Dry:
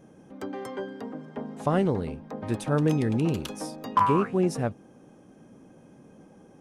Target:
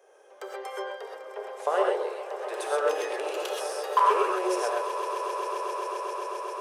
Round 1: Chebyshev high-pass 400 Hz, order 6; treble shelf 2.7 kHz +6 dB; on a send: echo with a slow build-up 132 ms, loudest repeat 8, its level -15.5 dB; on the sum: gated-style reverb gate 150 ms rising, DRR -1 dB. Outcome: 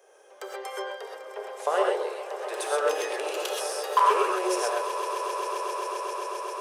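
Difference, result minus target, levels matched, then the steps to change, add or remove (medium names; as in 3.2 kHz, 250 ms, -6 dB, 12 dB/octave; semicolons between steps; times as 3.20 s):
4 kHz band +3.0 dB
remove: treble shelf 2.7 kHz +6 dB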